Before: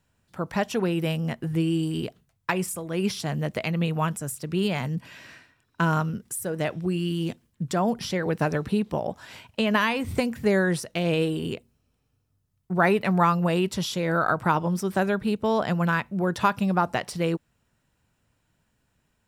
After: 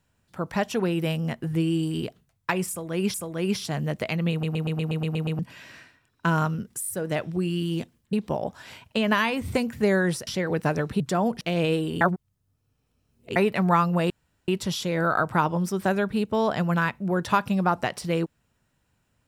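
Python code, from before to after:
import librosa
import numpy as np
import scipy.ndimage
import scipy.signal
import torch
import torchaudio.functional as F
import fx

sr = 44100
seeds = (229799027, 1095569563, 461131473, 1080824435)

y = fx.edit(x, sr, fx.repeat(start_s=2.69, length_s=0.45, count=2),
    fx.stutter_over(start_s=3.86, slice_s=0.12, count=9),
    fx.stutter(start_s=6.36, slice_s=0.02, count=4),
    fx.swap(start_s=7.62, length_s=0.41, other_s=8.76, other_length_s=2.14),
    fx.reverse_span(start_s=11.5, length_s=1.35),
    fx.insert_room_tone(at_s=13.59, length_s=0.38), tone=tone)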